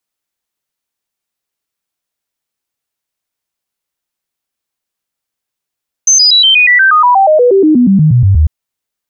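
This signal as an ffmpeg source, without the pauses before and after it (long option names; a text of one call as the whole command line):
ffmpeg -f lavfi -i "aevalsrc='0.668*clip(min(mod(t,0.12),0.12-mod(t,0.12))/0.005,0,1)*sin(2*PI*6230*pow(2,-floor(t/0.12)/3)*mod(t,0.12))':duration=2.4:sample_rate=44100" out.wav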